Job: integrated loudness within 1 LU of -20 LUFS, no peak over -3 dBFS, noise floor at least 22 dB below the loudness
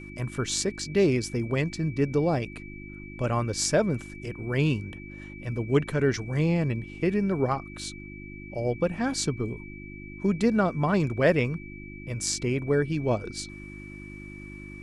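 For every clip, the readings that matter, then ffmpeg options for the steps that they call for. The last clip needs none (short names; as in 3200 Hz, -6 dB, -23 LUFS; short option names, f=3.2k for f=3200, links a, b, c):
hum 50 Hz; harmonics up to 350 Hz; hum level -42 dBFS; steady tone 2300 Hz; tone level -45 dBFS; loudness -27.0 LUFS; peak -8.5 dBFS; loudness target -20.0 LUFS
-> -af "bandreject=f=50:t=h:w=4,bandreject=f=100:t=h:w=4,bandreject=f=150:t=h:w=4,bandreject=f=200:t=h:w=4,bandreject=f=250:t=h:w=4,bandreject=f=300:t=h:w=4,bandreject=f=350:t=h:w=4"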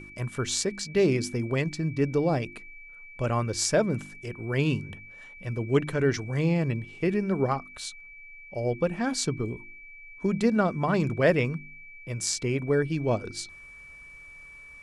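hum none; steady tone 2300 Hz; tone level -45 dBFS
-> -af "bandreject=f=2.3k:w=30"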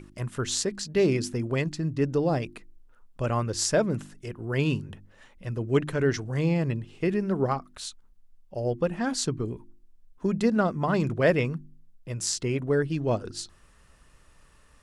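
steady tone none; loudness -27.5 LUFS; peak -8.5 dBFS; loudness target -20.0 LUFS
-> -af "volume=7.5dB,alimiter=limit=-3dB:level=0:latency=1"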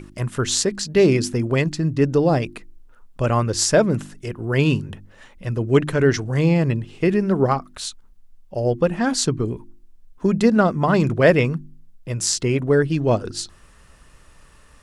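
loudness -20.0 LUFS; peak -3.0 dBFS; noise floor -50 dBFS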